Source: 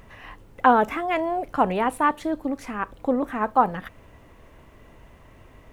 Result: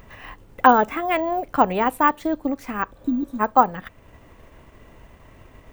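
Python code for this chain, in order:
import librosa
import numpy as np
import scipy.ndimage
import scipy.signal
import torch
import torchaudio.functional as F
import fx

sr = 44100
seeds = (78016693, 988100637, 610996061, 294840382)

y = fx.spec_repair(x, sr, seeds[0], start_s=2.98, length_s=0.39, low_hz=400.0, high_hz=3600.0, source='before')
y = fx.transient(y, sr, attack_db=2, sustain_db=-4)
y = np.repeat(scipy.signal.resample_poly(y, 1, 2), 2)[:len(y)]
y = fx.high_shelf(y, sr, hz=7400.0, db=4.5)
y = F.gain(torch.from_numpy(y), 2.0).numpy()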